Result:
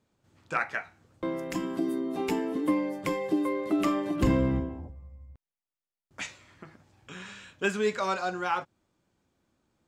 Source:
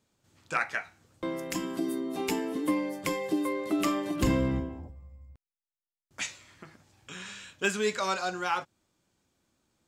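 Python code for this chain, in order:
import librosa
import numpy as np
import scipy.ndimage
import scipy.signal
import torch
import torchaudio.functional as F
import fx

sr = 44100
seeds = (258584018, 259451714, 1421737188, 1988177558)

y = fx.high_shelf(x, sr, hz=3000.0, db=-10.0)
y = y * 10.0 ** (2.0 / 20.0)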